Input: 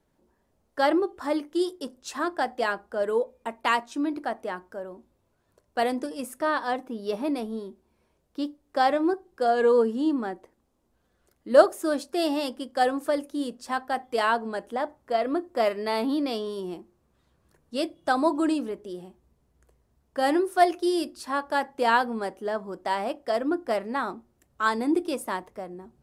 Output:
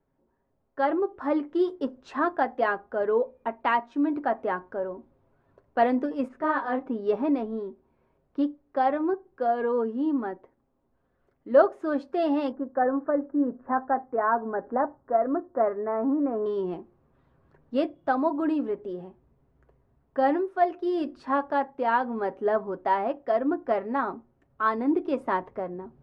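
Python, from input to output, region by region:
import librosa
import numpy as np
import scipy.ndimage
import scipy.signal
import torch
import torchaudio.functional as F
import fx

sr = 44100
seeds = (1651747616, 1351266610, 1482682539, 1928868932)

y = fx.chain(x, sr, fx.air_absorb(metres=87.0),
    fx.detune_double(cents=29), at=(6.28, 6.86))
y = fx.chain(y, sr, fx.block_float(bits=7),
    fx.steep_lowpass(hz=1700.0, slope=36), at=(12.52, 16.46))
y = scipy.signal.sosfilt(scipy.signal.butter(2, 1700.0, 'lowpass', fs=sr, output='sos'), y)
y = y + 0.39 * np.pad(y, (int(7.4 * sr / 1000.0), 0))[:len(y)]
y = fx.rider(y, sr, range_db=5, speed_s=0.5)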